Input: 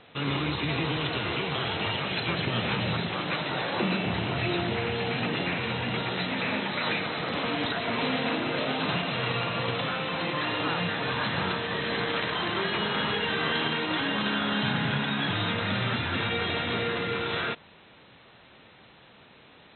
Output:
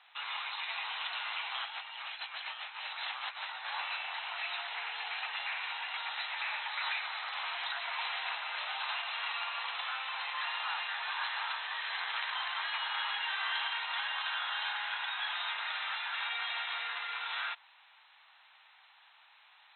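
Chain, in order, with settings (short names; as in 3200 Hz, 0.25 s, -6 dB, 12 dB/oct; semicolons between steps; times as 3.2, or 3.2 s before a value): elliptic high-pass 820 Hz, stop band 80 dB; 1.65–3.66 negative-ratio compressor -36 dBFS, ratio -0.5; gain -5 dB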